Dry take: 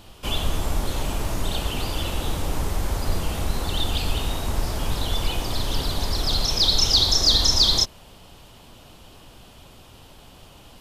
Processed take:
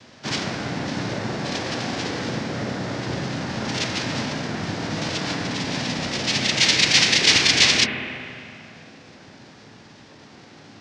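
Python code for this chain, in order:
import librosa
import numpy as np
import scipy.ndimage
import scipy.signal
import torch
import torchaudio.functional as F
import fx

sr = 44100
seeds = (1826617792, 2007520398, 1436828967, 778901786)

y = fx.noise_vocoder(x, sr, seeds[0], bands=4)
y = fx.rev_spring(y, sr, rt60_s=2.4, pass_ms=(32, 46), chirp_ms=70, drr_db=2.0)
y = fx.formant_shift(y, sr, semitones=-6)
y = y * librosa.db_to_amplitude(2.0)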